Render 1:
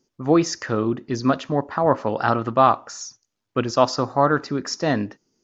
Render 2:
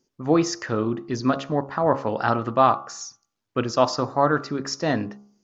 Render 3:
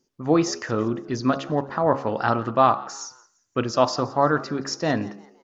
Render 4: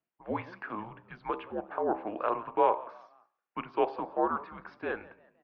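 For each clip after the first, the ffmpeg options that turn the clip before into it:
-af "bandreject=f=68.59:t=h:w=4,bandreject=f=137.18:t=h:w=4,bandreject=f=205.77:t=h:w=4,bandreject=f=274.36:t=h:w=4,bandreject=f=342.95:t=h:w=4,bandreject=f=411.54:t=h:w=4,bandreject=f=480.13:t=h:w=4,bandreject=f=548.72:t=h:w=4,bandreject=f=617.31:t=h:w=4,bandreject=f=685.9:t=h:w=4,bandreject=f=754.49:t=h:w=4,bandreject=f=823.08:t=h:w=4,bandreject=f=891.67:t=h:w=4,bandreject=f=960.26:t=h:w=4,bandreject=f=1.02885k:t=h:w=4,bandreject=f=1.09744k:t=h:w=4,bandreject=f=1.16603k:t=h:w=4,bandreject=f=1.23462k:t=h:w=4,bandreject=f=1.30321k:t=h:w=4,bandreject=f=1.3718k:t=h:w=4,bandreject=f=1.44039k:t=h:w=4,volume=-1.5dB"
-filter_complex "[0:a]asplit=4[a][b][c][d];[b]adelay=171,afreqshift=79,volume=-21.5dB[e];[c]adelay=342,afreqshift=158,volume=-30.4dB[f];[d]adelay=513,afreqshift=237,volume=-39.2dB[g];[a][e][f][g]amix=inputs=4:normalize=0"
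-af "highpass=f=580:t=q:w=0.5412,highpass=f=580:t=q:w=1.307,lowpass=f=3k:t=q:w=0.5176,lowpass=f=3k:t=q:w=0.7071,lowpass=f=3k:t=q:w=1.932,afreqshift=-220,volume=-6.5dB"

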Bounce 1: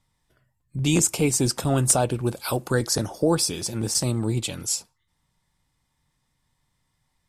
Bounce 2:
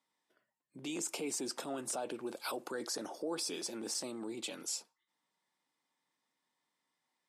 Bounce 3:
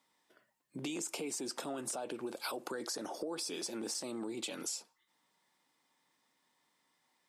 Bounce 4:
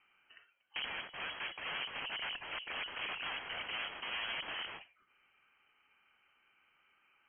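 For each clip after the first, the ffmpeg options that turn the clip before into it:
-af "highshelf=f=8.4k:g=-9.5,alimiter=limit=-21dB:level=0:latency=1:release=19,highpass=f=260:w=0.5412,highpass=f=260:w=1.3066,volume=-7dB"
-af "acompressor=threshold=-45dB:ratio=6,volume=8dB"
-af "equalizer=f=96:w=0.86:g=-6.5,aeval=exprs='(mod(106*val(0)+1,2)-1)/106':c=same,lowpass=f=2.8k:t=q:w=0.5098,lowpass=f=2.8k:t=q:w=0.6013,lowpass=f=2.8k:t=q:w=0.9,lowpass=f=2.8k:t=q:w=2.563,afreqshift=-3300,volume=7.5dB"

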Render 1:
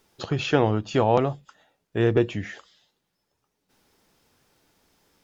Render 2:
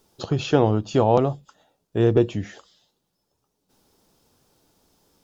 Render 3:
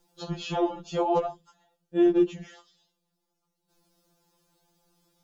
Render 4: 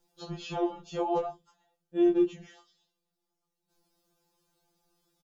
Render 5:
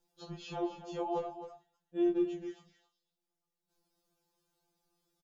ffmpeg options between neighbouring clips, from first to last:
-af "equalizer=f=2k:w=1.2:g=-10,volume=3dB"
-af "afftfilt=real='re*2.83*eq(mod(b,8),0)':imag='im*2.83*eq(mod(b,8),0)':win_size=2048:overlap=0.75,volume=-3.5dB"
-filter_complex "[0:a]asplit=2[a][b];[b]adelay=20,volume=-6dB[c];[a][c]amix=inputs=2:normalize=0,volume=-6dB"
-af "aecho=1:1:264:0.266,volume=-6dB"

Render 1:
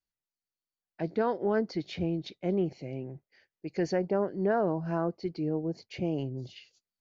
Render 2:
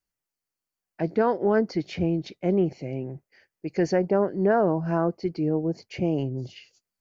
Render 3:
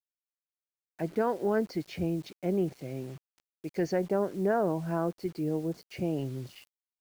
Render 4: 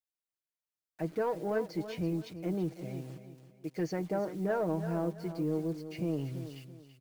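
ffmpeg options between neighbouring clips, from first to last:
-af "equalizer=f=3.7k:t=o:w=0.47:g=-7.5,volume=6dB"
-af "acrusher=bits=7:mix=0:aa=0.000001,volume=-6dB"
-filter_complex "[0:a]aecho=1:1:6.4:0.55,asplit=2[a][b];[b]volume=25dB,asoftclip=hard,volume=-25dB,volume=-9dB[c];[a][c]amix=inputs=2:normalize=0,aecho=1:1:332|664|996:0.266|0.0825|0.0256,volume=-7dB"

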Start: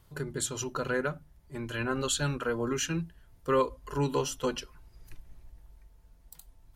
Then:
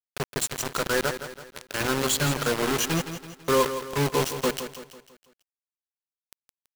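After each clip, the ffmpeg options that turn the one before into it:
-af "highpass=f=55:p=1,acrusher=bits=4:mix=0:aa=0.000001,aecho=1:1:165|330|495|660|825:0.299|0.137|0.0632|0.0291|0.0134,volume=4dB"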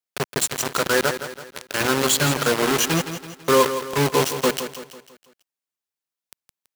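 -af "highpass=f=130:p=1,volume=5.5dB"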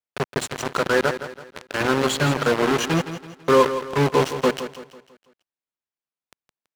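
-filter_complex "[0:a]asplit=2[a][b];[b]aeval=exprs='sgn(val(0))*max(abs(val(0))-0.0266,0)':c=same,volume=-6.5dB[c];[a][c]amix=inputs=2:normalize=0,aemphasis=mode=reproduction:type=75kf,volume=-1.5dB"

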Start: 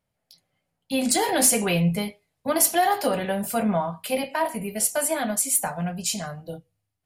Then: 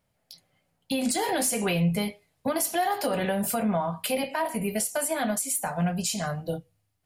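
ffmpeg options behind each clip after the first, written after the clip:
-filter_complex "[0:a]asplit=2[a][b];[b]acompressor=threshold=-29dB:ratio=6,volume=-2dB[c];[a][c]amix=inputs=2:normalize=0,alimiter=limit=-17.5dB:level=0:latency=1:release=232"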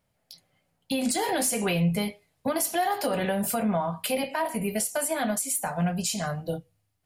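-af anull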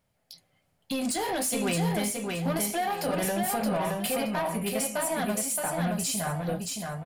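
-filter_complex "[0:a]asoftclip=type=tanh:threshold=-24dB,asplit=2[a][b];[b]aecho=0:1:622|1244|1866|2488:0.668|0.194|0.0562|0.0163[c];[a][c]amix=inputs=2:normalize=0"

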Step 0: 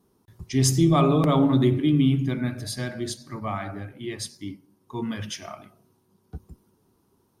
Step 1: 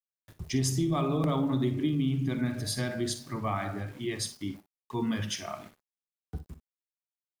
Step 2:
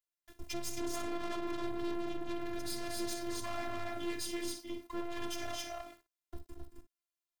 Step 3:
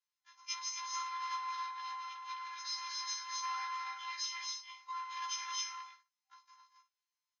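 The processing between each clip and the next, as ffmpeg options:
-filter_complex "[0:a]acompressor=threshold=-25dB:ratio=6,aeval=exprs='val(0)*gte(abs(val(0)),0.00316)':c=same,asplit=2[a][b];[b]aecho=0:1:45|58:0.15|0.211[c];[a][c]amix=inputs=2:normalize=0"
-af "aecho=1:1:224.5|265.3:0.282|0.631,aeval=exprs='(tanh(79.4*val(0)+0.6)-tanh(0.6))/79.4':c=same,afftfilt=real='hypot(re,im)*cos(PI*b)':imag='0':win_size=512:overlap=0.75,volume=5dB"
-af "afftfilt=real='re*between(b*sr/4096,780,6900)':imag='im*between(b*sr/4096,780,6900)':win_size=4096:overlap=0.75,aecho=1:1:6.6:0.56,afftfilt=real='re*1.73*eq(mod(b,3),0)':imag='im*1.73*eq(mod(b,3),0)':win_size=2048:overlap=0.75,volume=5dB"

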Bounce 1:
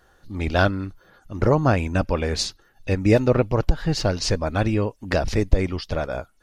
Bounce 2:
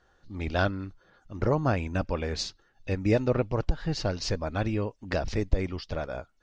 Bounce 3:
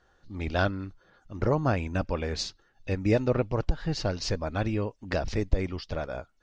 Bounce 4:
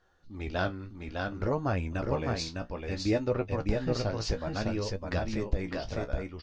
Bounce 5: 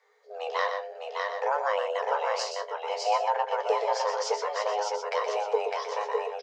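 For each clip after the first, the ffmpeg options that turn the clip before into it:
-af "lowpass=f=6.8k:w=0.5412,lowpass=f=6.8k:w=1.3066,volume=-7dB"
-af anull
-filter_complex "[0:a]asplit=2[a][b];[b]aecho=0:1:606:0.668[c];[a][c]amix=inputs=2:normalize=0,flanger=delay=9.9:depth=9.1:regen=42:speed=0.6:shape=triangular"
-filter_complex "[0:a]asplit=2[a][b];[b]asoftclip=type=tanh:threshold=-23dB,volume=-12dB[c];[a][c]amix=inputs=2:normalize=0,afreqshift=410,aecho=1:1:122:0.422"

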